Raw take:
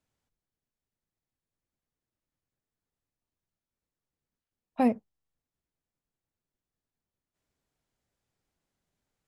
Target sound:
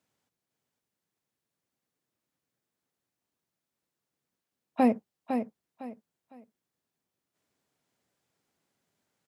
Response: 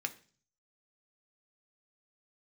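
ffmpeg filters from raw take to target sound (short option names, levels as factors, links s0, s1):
-filter_complex "[0:a]highpass=150,alimiter=limit=0.119:level=0:latency=1:release=71,asplit=2[s0][s1];[s1]aecho=0:1:506|1012|1518:0.447|0.121|0.0326[s2];[s0][s2]amix=inputs=2:normalize=0,volume=1.68"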